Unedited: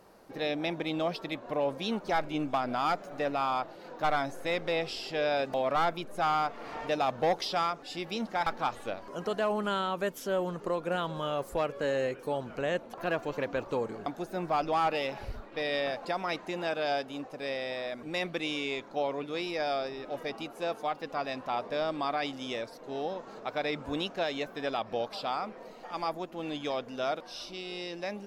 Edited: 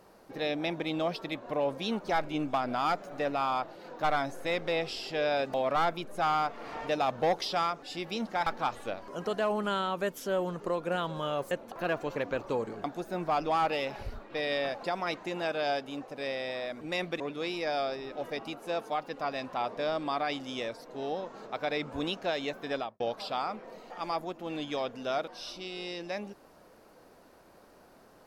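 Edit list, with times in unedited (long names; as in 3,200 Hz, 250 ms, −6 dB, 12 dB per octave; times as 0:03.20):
0:11.51–0:12.73: remove
0:18.42–0:19.13: remove
0:24.68–0:24.93: fade out and dull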